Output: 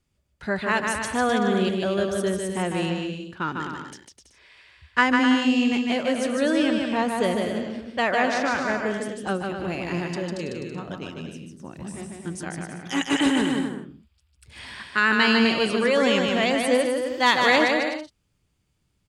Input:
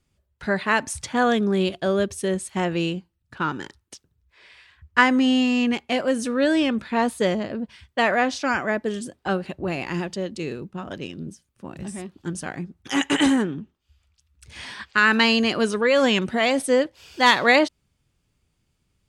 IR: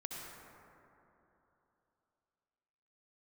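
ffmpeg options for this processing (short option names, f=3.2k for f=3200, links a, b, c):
-filter_complex "[0:a]asettb=1/sr,asplit=3[a][b][c];[a]atrim=end=13.214[d];[b]atrim=start=13.21:end=15.87,asetpts=PTS-STARTPTS,afade=t=in:d=0.004:c=qsin,afade=t=out:st=2.656:d=0.004:c=qsin,equalizer=f=6.2k:t=o:w=0.24:g=-10[e];[c]atrim=start=15.866[f];[d][e]acrossfade=d=0.004:c1=hsin:c2=qsin[g];[g][f]acrossfade=d=0.004:c1=qsin:c2=hsin,aecho=1:1:150|255|328.5|380|416:0.631|0.398|0.251|0.158|0.1,volume=-3dB"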